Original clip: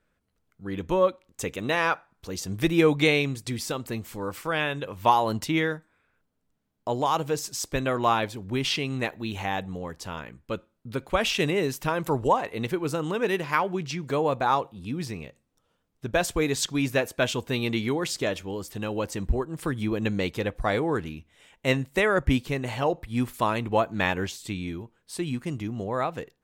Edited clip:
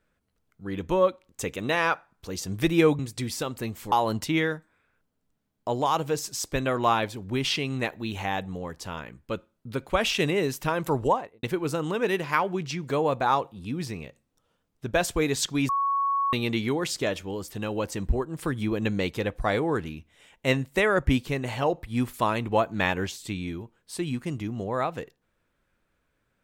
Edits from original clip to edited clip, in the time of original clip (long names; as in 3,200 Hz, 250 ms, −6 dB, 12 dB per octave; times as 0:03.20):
0:02.99–0:03.28: remove
0:04.21–0:05.12: remove
0:12.23–0:12.63: fade out and dull
0:16.89–0:17.53: beep over 1,110 Hz −22 dBFS